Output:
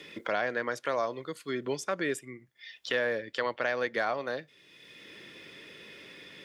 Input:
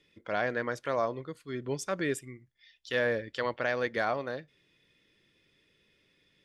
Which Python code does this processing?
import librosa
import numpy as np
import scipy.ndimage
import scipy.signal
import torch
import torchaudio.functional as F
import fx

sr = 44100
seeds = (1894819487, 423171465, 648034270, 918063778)

y = fx.highpass(x, sr, hz=310.0, slope=6)
y = fx.band_squash(y, sr, depth_pct=70)
y = y * 10.0 ** (1.5 / 20.0)